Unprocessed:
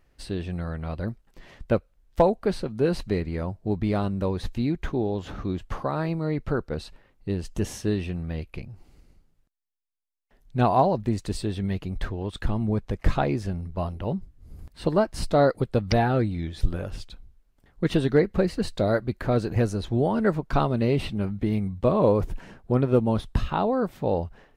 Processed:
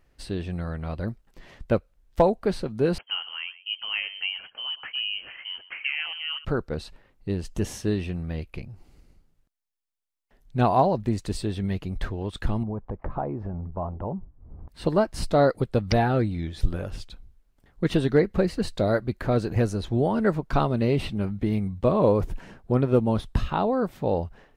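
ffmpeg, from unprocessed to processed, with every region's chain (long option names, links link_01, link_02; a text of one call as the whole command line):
ffmpeg -i in.wav -filter_complex "[0:a]asettb=1/sr,asplit=3[link_01][link_02][link_03];[link_01]atrim=end=2.984[link_04];[link_02]atrim=start=2.98:end=6.45,asetpts=PTS-STARTPTS,afade=type=in:duration=0.004:curve=qsin,afade=type=out:start_time=3.466:duration=0.004:curve=qsin,highpass=390,aecho=1:1:122:0.158,atrim=end_sample=153027,lowpass=frequency=2800:width_type=q:width=0.5098,lowpass=frequency=2800:width_type=q:width=0.6013,lowpass=frequency=2800:width_type=q:width=0.9,lowpass=frequency=2800:width_type=q:width=2.563,afreqshift=-3300[link_05];[link_03]atrim=start=6.446[link_06];[link_04][link_05]acrossfade=duration=0.004:curve1=hsin:curve2=qsin[link_07];[link_07][link_06]acrossfade=duration=0.004:curve1=qsin:curve2=hsin,asettb=1/sr,asplit=3[link_08][link_09][link_10];[link_08]atrim=end=12.634[link_11];[link_09]atrim=start=12.63:end=14.69,asetpts=PTS-STARTPTS,afade=type=in:duration=0.004:curve=qsin,afade=type=out:start_time=2.056:duration=0.004:curve=qsin,acompressor=threshold=-28dB:ratio=4:attack=3.2:release=140:knee=1:detection=peak,lowpass=frequency=940:width_type=q:width=2[link_12];[link_10]atrim=start=14.686[link_13];[link_11][link_12]acrossfade=duration=0.004:curve1=hsin:curve2=qsin[link_14];[link_14][link_13]acrossfade=duration=0.004:curve1=qsin:curve2=hsin" out.wav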